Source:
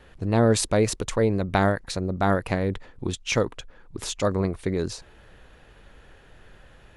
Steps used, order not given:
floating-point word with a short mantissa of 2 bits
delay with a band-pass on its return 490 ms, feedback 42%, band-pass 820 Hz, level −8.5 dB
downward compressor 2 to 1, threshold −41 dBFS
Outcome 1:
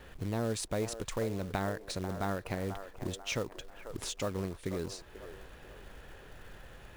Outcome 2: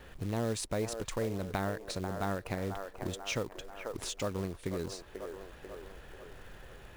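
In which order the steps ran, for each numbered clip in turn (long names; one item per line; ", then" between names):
downward compressor, then delay with a band-pass on its return, then floating-point word with a short mantissa
delay with a band-pass on its return, then floating-point word with a short mantissa, then downward compressor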